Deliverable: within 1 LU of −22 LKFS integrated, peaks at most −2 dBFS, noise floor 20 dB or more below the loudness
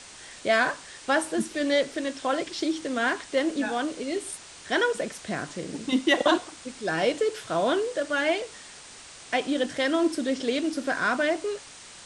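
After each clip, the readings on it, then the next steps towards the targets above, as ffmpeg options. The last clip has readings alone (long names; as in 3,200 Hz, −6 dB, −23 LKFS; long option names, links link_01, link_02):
background noise floor −46 dBFS; target noise floor −47 dBFS; integrated loudness −27.0 LKFS; sample peak −9.0 dBFS; target loudness −22.0 LKFS
→ -af "afftdn=noise_reduction=6:noise_floor=-46"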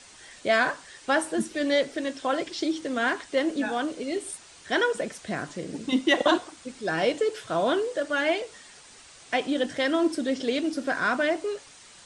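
background noise floor −51 dBFS; integrated loudness −27.0 LKFS; sample peak −9.0 dBFS; target loudness −22.0 LKFS
→ -af "volume=5dB"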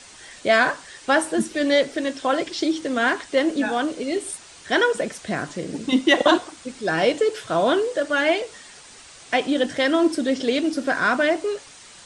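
integrated loudness −22.0 LKFS; sample peak −4.0 dBFS; background noise floor −46 dBFS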